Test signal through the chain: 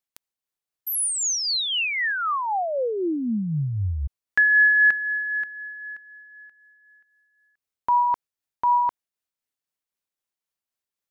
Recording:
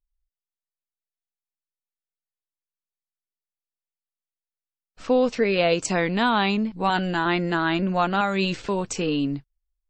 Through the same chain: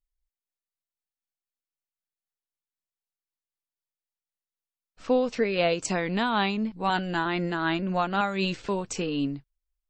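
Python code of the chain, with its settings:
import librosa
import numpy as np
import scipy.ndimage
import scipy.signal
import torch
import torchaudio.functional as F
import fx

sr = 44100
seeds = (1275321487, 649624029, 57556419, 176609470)

y = x * (1.0 - 0.36 / 2.0 + 0.36 / 2.0 * np.cos(2.0 * np.pi * 3.9 * (np.arange(len(x)) / sr)))
y = y * librosa.db_to_amplitude(-2.5)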